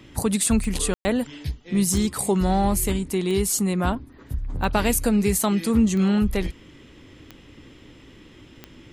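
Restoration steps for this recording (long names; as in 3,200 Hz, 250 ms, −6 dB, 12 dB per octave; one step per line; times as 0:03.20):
click removal
ambience match 0:00.94–0:01.05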